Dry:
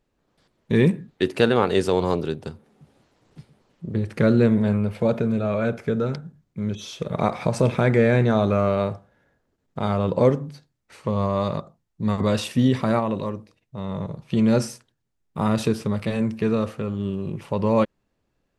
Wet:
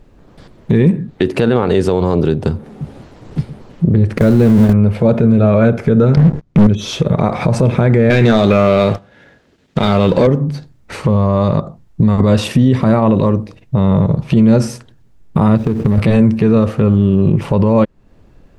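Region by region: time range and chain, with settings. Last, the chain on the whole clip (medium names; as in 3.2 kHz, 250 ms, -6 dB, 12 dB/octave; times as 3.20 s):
4.18–4.73 s: jump at every zero crossing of -24 dBFS + gate with hold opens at -10 dBFS, closes at -13 dBFS + treble shelf 8.6 kHz +8.5 dB
6.17–6.67 s: low-pass 7.1 kHz + waveshaping leveller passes 5 + loudspeaker Doppler distortion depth 0.53 ms
8.10–10.27 s: frequency weighting D + waveshaping leveller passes 2
15.57–15.98 s: median filter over 41 samples + short-mantissa float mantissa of 4-bit + compression 8:1, threshold -28 dBFS
whole clip: tilt EQ -2 dB/octave; compression 2.5:1, threshold -32 dBFS; loudness maximiser +22.5 dB; trim -1.5 dB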